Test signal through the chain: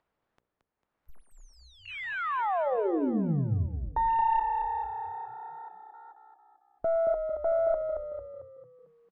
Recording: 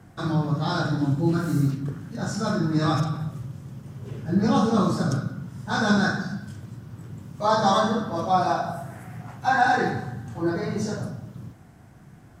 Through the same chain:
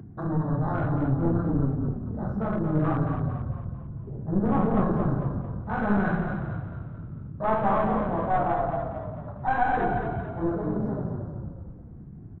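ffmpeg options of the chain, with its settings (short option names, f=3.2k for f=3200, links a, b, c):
-filter_complex "[0:a]aeval=exprs='clip(val(0),-1,0.0473)':c=same,lowpass=1.2k,bandreject=f=60:t=h:w=6,bandreject=f=120:t=h:w=6,bandreject=f=180:t=h:w=6,bandreject=f=240:t=h:w=6,bandreject=f=300:t=h:w=6,bandreject=f=360:t=h:w=6,bandreject=f=420:t=h:w=6,bandreject=f=480:t=h:w=6,bandreject=f=540:t=h:w=6,bandreject=f=600:t=h:w=6,acompressor=mode=upward:threshold=-35dB:ratio=2.5,afwtdn=0.0126,asplit=7[a][b][c][d][e][f][g];[b]adelay=224,afreqshift=-32,volume=-6dB[h];[c]adelay=448,afreqshift=-64,volume=-12dB[i];[d]adelay=672,afreqshift=-96,volume=-18dB[j];[e]adelay=896,afreqshift=-128,volume=-24.1dB[k];[f]adelay=1120,afreqshift=-160,volume=-30.1dB[l];[g]adelay=1344,afreqshift=-192,volume=-36.1dB[m];[a][h][i][j][k][l][m]amix=inputs=7:normalize=0"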